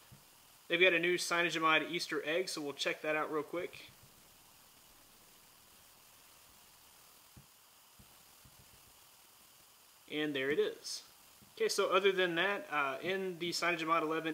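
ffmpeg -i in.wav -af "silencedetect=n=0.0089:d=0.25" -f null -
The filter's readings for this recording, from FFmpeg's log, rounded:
silence_start: 0.00
silence_end: 0.70 | silence_duration: 0.70
silence_start: 3.81
silence_end: 10.11 | silence_duration: 6.30
silence_start: 10.99
silence_end: 11.58 | silence_duration: 0.59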